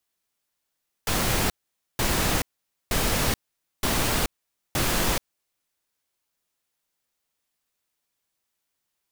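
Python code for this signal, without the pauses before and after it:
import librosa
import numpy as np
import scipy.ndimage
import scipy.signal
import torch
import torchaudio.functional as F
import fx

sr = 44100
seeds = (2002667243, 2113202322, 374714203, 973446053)

y = fx.noise_burst(sr, seeds[0], colour='pink', on_s=0.43, off_s=0.49, bursts=5, level_db=-23.5)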